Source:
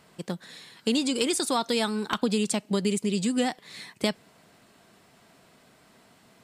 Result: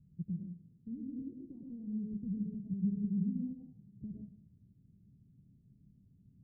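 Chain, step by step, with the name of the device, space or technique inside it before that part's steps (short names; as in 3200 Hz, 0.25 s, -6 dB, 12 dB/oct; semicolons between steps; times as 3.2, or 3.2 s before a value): club heard from the street (limiter -23 dBFS, peak gain reduction 10.5 dB; LPF 160 Hz 24 dB/oct; reverb RT60 0.50 s, pre-delay 93 ms, DRR -1.5 dB); gain +4.5 dB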